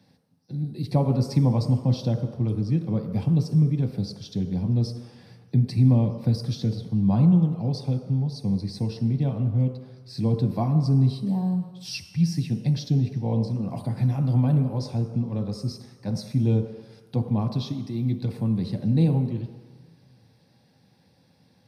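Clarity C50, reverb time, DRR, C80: 8.0 dB, 1.4 s, 5.0 dB, 9.5 dB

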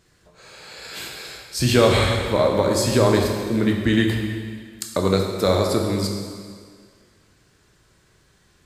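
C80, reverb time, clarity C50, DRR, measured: 4.5 dB, 1.9 s, 3.0 dB, 1.0 dB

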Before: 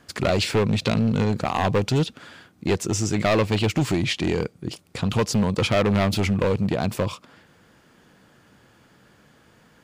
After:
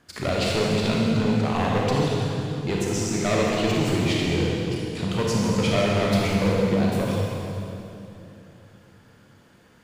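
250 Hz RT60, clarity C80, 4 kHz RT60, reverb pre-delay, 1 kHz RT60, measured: 3.7 s, −0.5 dB, 2.5 s, 29 ms, 2.7 s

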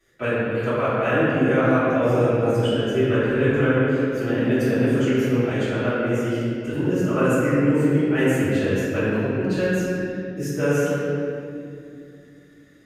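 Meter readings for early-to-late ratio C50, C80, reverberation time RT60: −4.5 dB, −2.5 dB, 2.5 s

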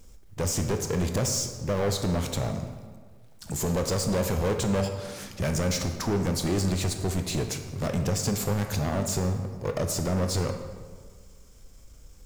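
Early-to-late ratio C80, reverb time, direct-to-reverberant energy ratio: 9.0 dB, 1.6 s, 6.0 dB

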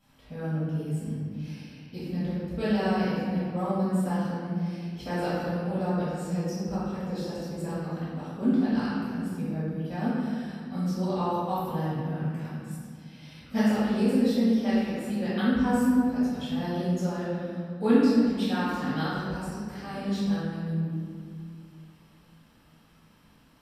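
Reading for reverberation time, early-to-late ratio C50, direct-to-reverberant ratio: 2.2 s, −4.0 dB, −14.0 dB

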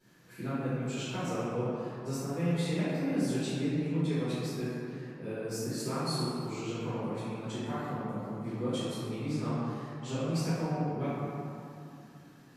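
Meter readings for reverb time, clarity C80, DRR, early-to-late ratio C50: 2.8 s, −2.0 dB, −16.0 dB, −5.0 dB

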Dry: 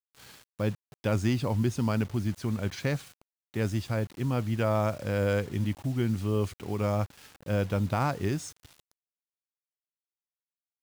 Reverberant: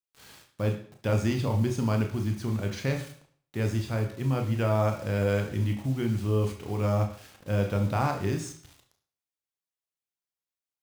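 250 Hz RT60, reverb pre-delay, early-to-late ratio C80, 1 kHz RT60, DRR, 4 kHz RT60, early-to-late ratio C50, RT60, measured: 0.55 s, 24 ms, 12.5 dB, 0.55 s, 3.5 dB, 0.50 s, 9.0 dB, 0.55 s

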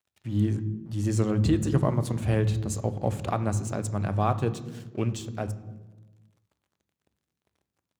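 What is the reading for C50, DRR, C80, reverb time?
14.5 dB, 11.0 dB, 16.5 dB, 1.2 s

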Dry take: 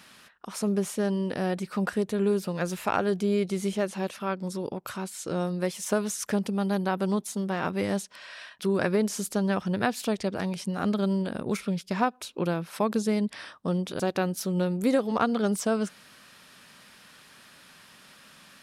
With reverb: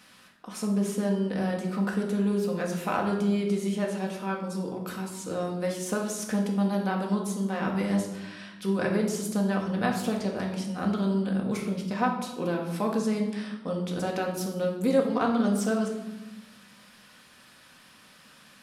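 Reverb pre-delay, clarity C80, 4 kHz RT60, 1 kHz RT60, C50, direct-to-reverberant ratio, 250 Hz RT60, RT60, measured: 4 ms, 8.5 dB, 0.70 s, 1.0 s, 6.0 dB, −0.5 dB, 1.9 s, 1.1 s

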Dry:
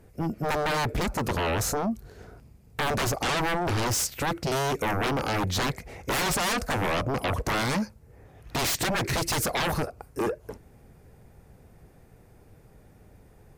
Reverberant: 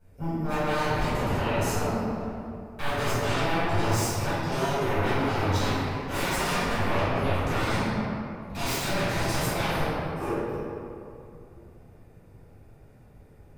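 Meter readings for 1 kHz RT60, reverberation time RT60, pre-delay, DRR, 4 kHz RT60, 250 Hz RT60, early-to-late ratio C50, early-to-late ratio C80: 2.5 s, 2.5 s, 4 ms, −14.5 dB, 1.3 s, 3.0 s, −4.5 dB, −2.0 dB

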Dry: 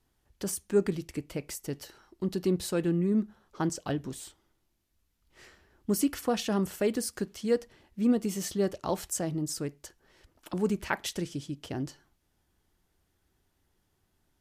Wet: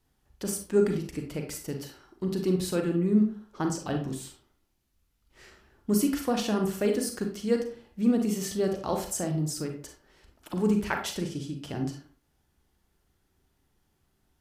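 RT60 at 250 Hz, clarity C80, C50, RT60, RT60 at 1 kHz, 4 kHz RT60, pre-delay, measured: 0.45 s, 11.5 dB, 6.5 dB, 0.45 s, 0.45 s, 0.30 s, 35 ms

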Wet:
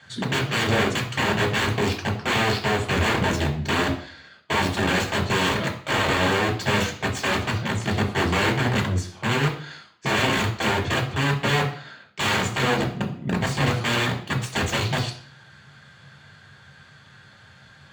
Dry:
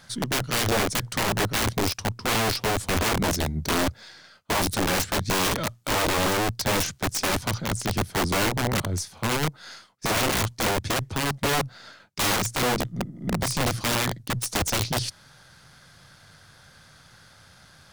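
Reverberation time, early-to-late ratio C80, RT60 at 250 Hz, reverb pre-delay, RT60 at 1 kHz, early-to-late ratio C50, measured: 0.50 s, 13.5 dB, 0.50 s, 3 ms, 0.50 s, 10.0 dB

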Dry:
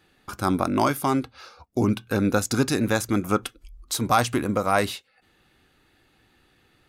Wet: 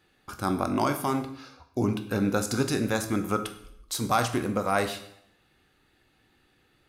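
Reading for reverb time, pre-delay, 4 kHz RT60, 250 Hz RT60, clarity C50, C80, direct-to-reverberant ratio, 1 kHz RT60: 0.75 s, 12 ms, 0.65 s, 0.80 s, 11.0 dB, 14.0 dB, 7.0 dB, 0.75 s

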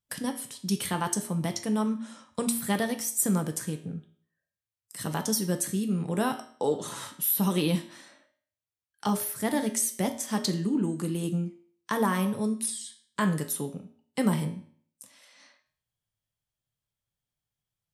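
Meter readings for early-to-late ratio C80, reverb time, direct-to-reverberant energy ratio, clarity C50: 15.0 dB, 0.55 s, 5.5 dB, 11.5 dB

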